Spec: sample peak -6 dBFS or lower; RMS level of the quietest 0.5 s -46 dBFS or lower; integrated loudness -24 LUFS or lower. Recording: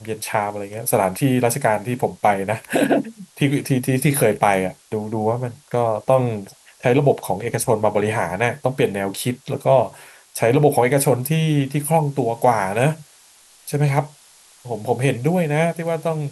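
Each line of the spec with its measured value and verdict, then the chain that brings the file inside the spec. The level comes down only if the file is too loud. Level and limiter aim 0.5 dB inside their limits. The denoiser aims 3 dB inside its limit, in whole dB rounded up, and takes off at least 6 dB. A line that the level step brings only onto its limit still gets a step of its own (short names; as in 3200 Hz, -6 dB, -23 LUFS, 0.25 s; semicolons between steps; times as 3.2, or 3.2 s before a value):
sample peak -4.0 dBFS: fail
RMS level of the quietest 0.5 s -51 dBFS: OK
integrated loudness -20.0 LUFS: fail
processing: gain -4.5 dB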